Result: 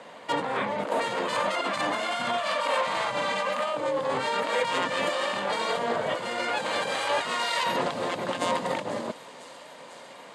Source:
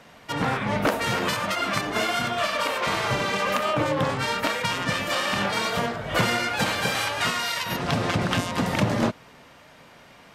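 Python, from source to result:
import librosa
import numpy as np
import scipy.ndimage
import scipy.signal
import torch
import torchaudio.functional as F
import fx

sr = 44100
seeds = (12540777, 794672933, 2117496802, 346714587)

y = fx.peak_eq(x, sr, hz=400.0, db=-13.5, octaves=0.39, at=(1.73, 3.74))
y = fx.over_compress(y, sr, threshold_db=-29.0, ratio=-1.0)
y = fx.cabinet(y, sr, low_hz=250.0, low_slope=12, high_hz=9200.0, hz=(530.0, 970.0, 1400.0, 2500.0, 5600.0), db=(7, 5, -3, -3, -10))
y = fx.echo_wet_highpass(y, sr, ms=498, feedback_pct=79, hz=5100.0, wet_db=-12.5)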